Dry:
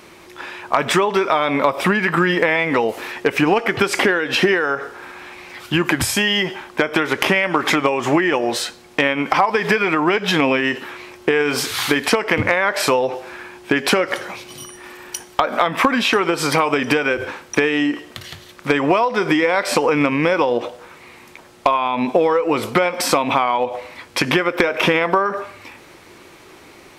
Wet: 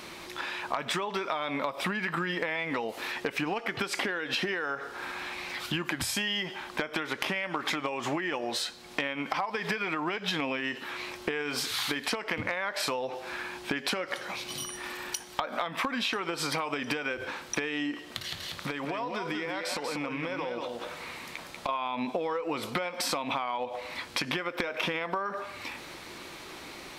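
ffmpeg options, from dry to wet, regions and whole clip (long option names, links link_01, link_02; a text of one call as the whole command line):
ffmpeg -i in.wav -filter_complex "[0:a]asettb=1/sr,asplit=3[link_01][link_02][link_03];[link_01]atrim=end=18.184[link_04];[link_02]atrim=start=18.18:end=21.69,asetpts=PTS-STARTPTS,afade=type=in:duration=0.004:curve=qsin,afade=type=out:start_time=3.506:duration=0.004:curve=qsin,acompressor=threshold=-28dB:ratio=2:attack=3.2:release=140:knee=1:detection=peak,aecho=1:1:190:0.531,atrim=end_sample=154791[link_05];[link_03]atrim=start=21.686[link_06];[link_04][link_05]acrossfade=duration=0.004:curve1=hsin:curve2=qsin[link_07];[link_07][link_06]acrossfade=duration=0.004:curve1=qsin:curve2=hsin,equalizer=frequency=100:width_type=o:width=0.67:gain=-5,equalizer=frequency=400:width_type=o:width=0.67:gain=-4,equalizer=frequency=4000:width_type=o:width=0.67:gain=5,acompressor=threshold=-33dB:ratio=3" out.wav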